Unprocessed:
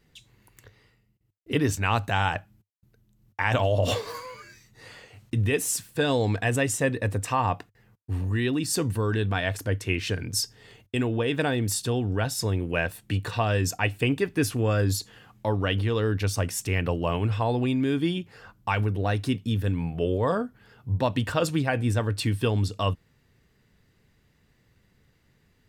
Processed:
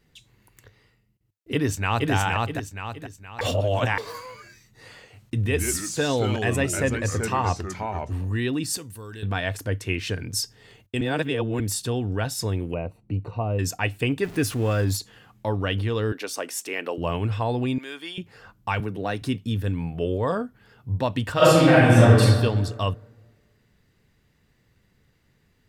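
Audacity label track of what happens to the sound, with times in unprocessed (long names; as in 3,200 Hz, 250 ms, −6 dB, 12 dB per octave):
1.530000	2.120000	delay throw 470 ms, feedback 40%, level −1.5 dB
3.410000	3.980000	reverse
5.350000	8.130000	delay with pitch and tempo change per echo 107 ms, each echo −3 semitones, echoes 2, each echo −6 dB
8.770000	9.230000	first-order pre-emphasis coefficient 0.8
11.010000	11.600000	reverse
12.740000	13.590000	moving average over 26 samples
14.230000	14.970000	converter with a step at zero of −36.5 dBFS
16.120000	16.980000	high-pass filter 290 Hz 24 dB per octave
17.780000	18.180000	high-pass filter 790 Hz
18.800000	19.220000	high-pass filter 130 Hz 24 dB per octave
21.330000	22.200000	thrown reverb, RT60 1.5 s, DRR −10.5 dB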